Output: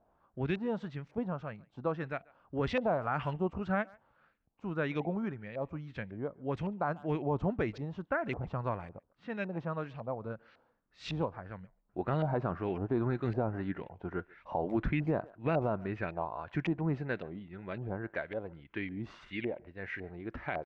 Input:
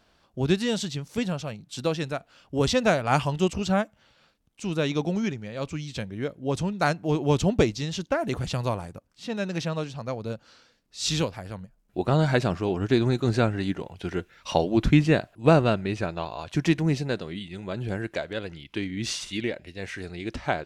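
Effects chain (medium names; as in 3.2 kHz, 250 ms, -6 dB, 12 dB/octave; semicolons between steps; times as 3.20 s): LFO low-pass saw up 1.8 Hz 700–2400 Hz; speakerphone echo 140 ms, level -25 dB; peak limiter -13 dBFS, peak gain reduction 9.5 dB; trim -8.5 dB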